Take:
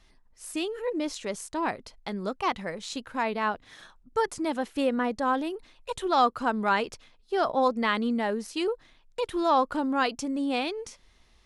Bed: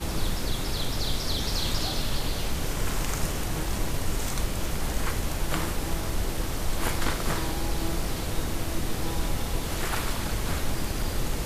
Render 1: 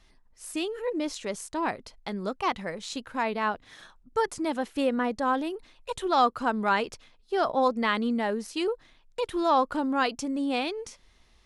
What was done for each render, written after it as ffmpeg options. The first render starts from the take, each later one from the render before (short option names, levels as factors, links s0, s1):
-af anull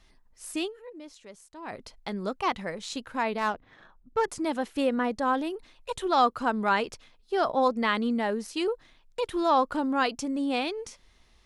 -filter_complex "[0:a]asettb=1/sr,asplit=3[s0][s1][s2];[s0]atrim=end=3.384[s3];[s1]atrim=start=3.38:end=4.28,asetpts=PTS-STARTPTS,afade=t=in:d=0.004:c=qsin,afade=t=out:st=0.896:d=0.004:c=qsin,adynamicsmooth=sensitivity=3.5:basefreq=1700[s4];[s2]atrim=start=4.276[s5];[s3][s4]acrossfade=d=0.004:c1=hsin:c2=qsin[s6];[s6][s5]acrossfade=d=0.004:c1=qsin:c2=hsin,asplit=3[s7][s8][s9];[s7]atrim=end=1.04,asetpts=PTS-STARTPTS,afade=t=out:st=0.66:d=0.38:c=exp:silence=0.188365[s10];[s8]atrim=start=1.04:end=1.36,asetpts=PTS-STARTPTS,volume=0.188[s11];[s9]atrim=start=1.36,asetpts=PTS-STARTPTS,afade=t=in:d=0.38:c=exp:silence=0.188365[s12];[s10][s11][s12]concat=n=3:v=0:a=1"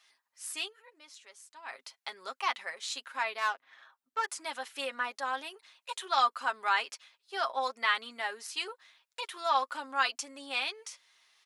-af "highpass=1200,aecho=1:1:7.4:0.55"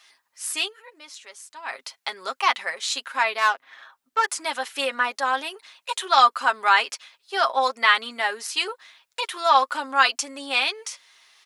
-af "volume=3.35"